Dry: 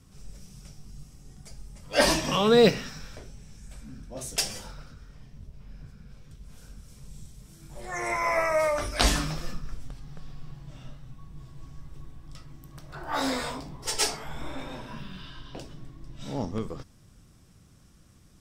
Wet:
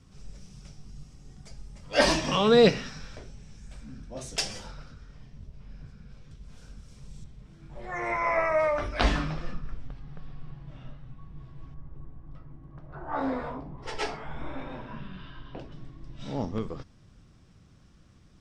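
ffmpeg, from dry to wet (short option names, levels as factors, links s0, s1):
-af "asetnsamples=n=441:p=0,asendcmd='7.24 lowpass f 2800;11.74 lowpass f 1200;13.78 lowpass f 2400;15.72 lowpass f 4900',lowpass=6200"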